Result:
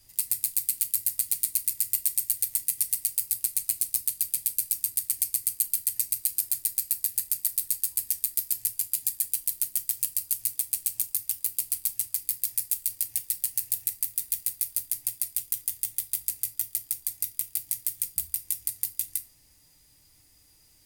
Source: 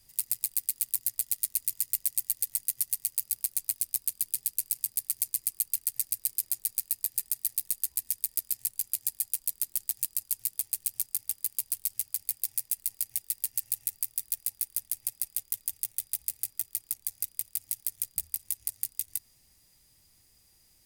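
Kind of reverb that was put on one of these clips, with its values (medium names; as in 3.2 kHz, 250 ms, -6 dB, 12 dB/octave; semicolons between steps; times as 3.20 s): FDN reverb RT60 0.34 s, low-frequency decay 1.2×, high-frequency decay 0.75×, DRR 5 dB; trim +2.5 dB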